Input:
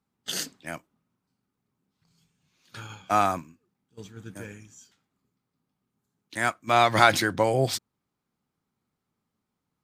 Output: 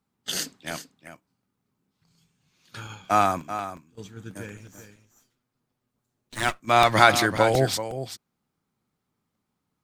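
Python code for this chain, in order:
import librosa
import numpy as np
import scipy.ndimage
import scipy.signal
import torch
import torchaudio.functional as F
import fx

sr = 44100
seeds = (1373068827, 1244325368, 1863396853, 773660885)

y = fx.lower_of_two(x, sr, delay_ms=8.2, at=(4.57, 6.6))
y = y + 10.0 ** (-11.0 / 20.0) * np.pad(y, (int(385 * sr / 1000.0), 0))[:len(y)]
y = fx.buffer_crackle(y, sr, first_s=0.35, period_s=0.18, block=64, kind='repeat')
y = F.gain(torch.from_numpy(y), 2.0).numpy()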